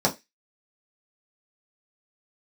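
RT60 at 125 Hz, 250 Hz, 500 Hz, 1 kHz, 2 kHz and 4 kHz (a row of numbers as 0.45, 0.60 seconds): 0.15, 0.15, 0.20, 0.20, 0.25, 0.25 seconds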